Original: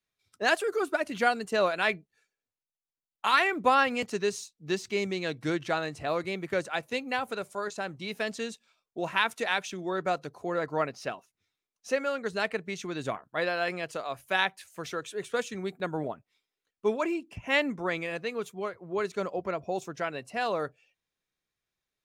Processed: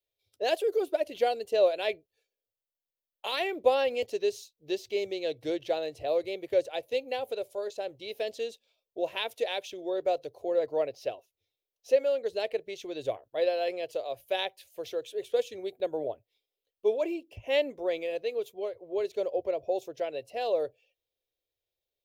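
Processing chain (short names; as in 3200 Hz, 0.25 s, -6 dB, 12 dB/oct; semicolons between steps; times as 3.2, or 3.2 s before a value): EQ curve 110 Hz 0 dB, 180 Hz -19 dB, 330 Hz -1 dB, 540 Hz +9 dB, 1300 Hz -17 dB, 3200 Hz +2 dB, 5000 Hz -2 dB, 8200 Hz -8 dB, 14000 Hz +6 dB; gain -2.5 dB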